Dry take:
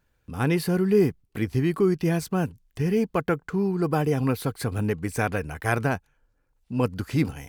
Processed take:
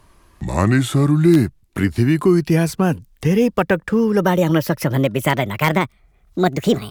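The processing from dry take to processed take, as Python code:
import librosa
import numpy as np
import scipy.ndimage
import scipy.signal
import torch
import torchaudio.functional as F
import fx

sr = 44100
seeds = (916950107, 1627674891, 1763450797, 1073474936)

p1 = fx.speed_glide(x, sr, from_pct=66, to_pct=151)
p2 = (np.mod(10.0 ** (10.5 / 20.0) * p1 + 1.0, 2.0) - 1.0) / 10.0 ** (10.5 / 20.0)
p3 = p1 + (p2 * librosa.db_to_amplitude(-9.5))
p4 = fx.band_squash(p3, sr, depth_pct=40)
y = p4 * librosa.db_to_amplitude(5.0)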